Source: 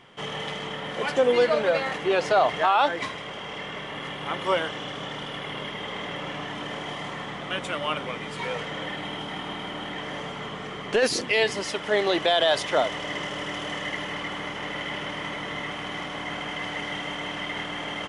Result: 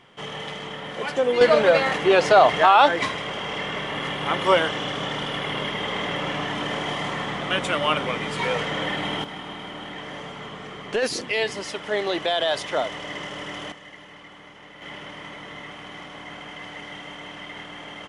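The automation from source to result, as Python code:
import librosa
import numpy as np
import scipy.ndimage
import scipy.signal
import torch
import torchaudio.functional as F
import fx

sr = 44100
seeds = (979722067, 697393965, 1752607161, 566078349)

y = fx.gain(x, sr, db=fx.steps((0.0, -1.0), (1.41, 6.0), (9.24, -2.0), (13.72, -13.0), (14.82, -6.0)))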